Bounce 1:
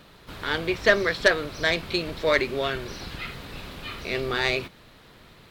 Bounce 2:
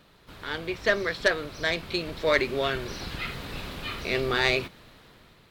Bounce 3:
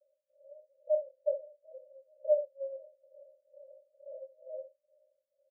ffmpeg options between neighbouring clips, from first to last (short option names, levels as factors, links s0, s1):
-af "dynaudnorm=f=350:g=5:m=3.76,volume=0.473"
-filter_complex "[0:a]tremolo=f=2.2:d=0.95,asuperpass=centerf=570:order=12:qfactor=5.8,asplit=2[s0][s1];[s1]aecho=0:1:28|67:0.376|0.251[s2];[s0][s2]amix=inputs=2:normalize=0"